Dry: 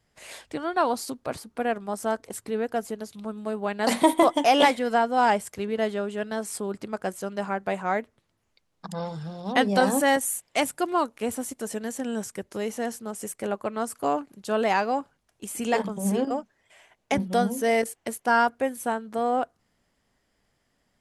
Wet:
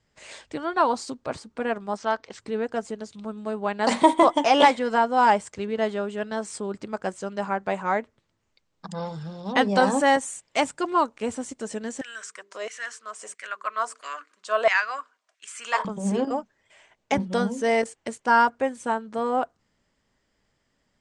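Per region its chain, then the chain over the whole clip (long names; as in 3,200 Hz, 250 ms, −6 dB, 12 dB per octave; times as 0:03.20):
0:01.97–0:02.40: low-pass filter 5,100 Hz 24 dB per octave + tilt shelving filter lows −6 dB, about 790 Hz
0:12.01–0:15.85: Butterworth band-reject 850 Hz, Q 5 + mains-hum notches 50/100/150/200/250/300/350/400/450 Hz + auto-filter high-pass saw down 1.5 Hz 670–2,000 Hz
whole clip: Butterworth low-pass 8,500 Hz 48 dB per octave; notch filter 720 Hz, Q 12; dynamic equaliser 950 Hz, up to +5 dB, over −35 dBFS, Q 1.4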